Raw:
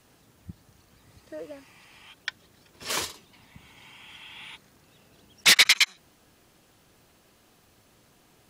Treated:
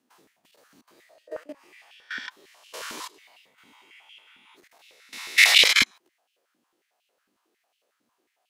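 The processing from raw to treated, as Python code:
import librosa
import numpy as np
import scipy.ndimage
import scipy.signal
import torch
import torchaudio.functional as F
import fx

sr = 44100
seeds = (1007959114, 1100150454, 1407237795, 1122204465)

y = fx.spec_swells(x, sr, rise_s=0.79)
y = fx.level_steps(y, sr, step_db=19)
y = fx.filter_held_highpass(y, sr, hz=11.0, low_hz=250.0, high_hz=2800.0)
y = y * 10.0 ** (-1.0 / 20.0)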